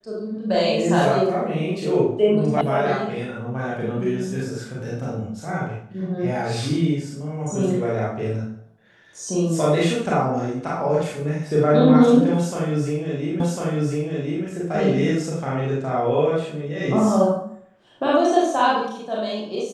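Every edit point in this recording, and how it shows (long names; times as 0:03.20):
0:02.61: cut off before it has died away
0:13.40: the same again, the last 1.05 s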